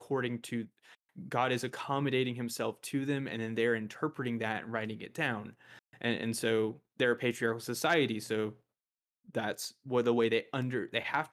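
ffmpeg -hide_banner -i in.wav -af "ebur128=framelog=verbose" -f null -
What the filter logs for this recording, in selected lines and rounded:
Integrated loudness:
  I:         -33.4 LUFS
  Threshold: -43.8 LUFS
Loudness range:
  LRA:         2.6 LU
  Threshold: -53.9 LUFS
  LRA low:   -35.2 LUFS
  LRA high:  -32.6 LUFS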